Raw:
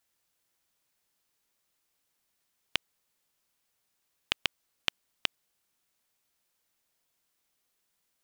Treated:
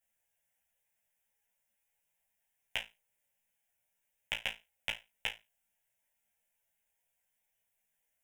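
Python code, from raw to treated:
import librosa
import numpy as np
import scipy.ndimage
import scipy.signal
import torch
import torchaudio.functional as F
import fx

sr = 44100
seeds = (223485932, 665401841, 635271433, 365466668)

y = fx.fixed_phaser(x, sr, hz=1200.0, stages=6)
y = fx.room_flutter(y, sr, wall_m=3.1, rt60_s=0.23)
y = fx.ensemble(y, sr)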